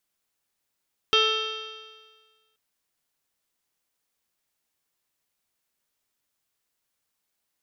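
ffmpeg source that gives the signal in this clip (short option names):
-f lavfi -i "aevalsrc='0.0708*pow(10,-3*t/1.52)*sin(2*PI*436.37*t)+0.0112*pow(10,-3*t/1.52)*sin(2*PI*874.96*t)+0.075*pow(10,-3*t/1.52)*sin(2*PI*1317.97*t)+0.0168*pow(10,-3*t/1.52)*sin(2*PI*1767.56*t)+0.01*pow(10,-3*t/1.52)*sin(2*PI*2225.84*t)+0.0596*pow(10,-3*t/1.52)*sin(2*PI*2694.86*t)+0.119*pow(10,-3*t/1.52)*sin(2*PI*3176.57*t)+0.0447*pow(10,-3*t/1.52)*sin(2*PI*3672.85*t)+0.00944*pow(10,-3*t/1.52)*sin(2*PI*4185.46*t)+0.02*pow(10,-3*t/1.52)*sin(2*PI*4716.06*t)+0.00708*pow(10,-3*t/1.52)*sin(2*PI*5266.22*t)+0.0106*pow(10,-3*t/1.52)*sin(2*PI*5837.37*t)':d=1.43:s=44100"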